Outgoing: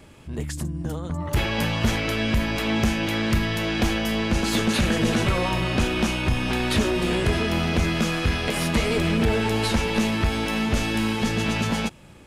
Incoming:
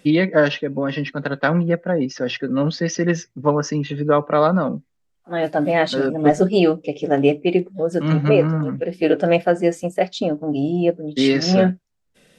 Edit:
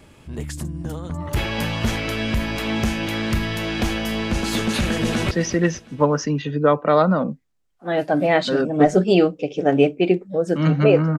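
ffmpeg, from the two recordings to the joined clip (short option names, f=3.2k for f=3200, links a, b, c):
-filter_complex "[0:a]apad=whole_dur=11.18,atrim=end=11.18,atrim=end=5.312[a];[1:a]atrim=start=2.758:end=8.63[b];[a][b]acrossfade=d=0.004:c1=hsin:c2=hsin,asplit=2[c][d];[d]afade=t=in:st=4.9:d=0.01,afade=t=out:st=5.31:d=0.01,aecho=0:1:240|480|720|960|1200:0.211349|0.105674|0.0528372|0.0264186|0.0132093[e];[c][e]amix=inputs=2:normalize=0"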